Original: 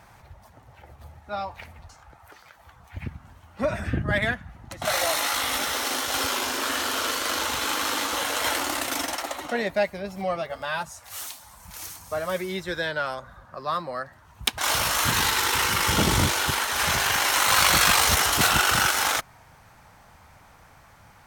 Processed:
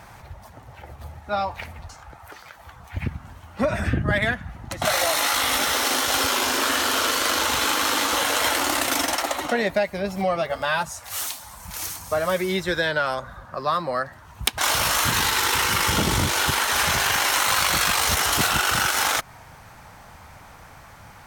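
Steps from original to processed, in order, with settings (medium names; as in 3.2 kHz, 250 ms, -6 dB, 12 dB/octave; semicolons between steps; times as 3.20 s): compression, threshold -25 dBFS, peak gain reduction 10 dB; trim +7 dB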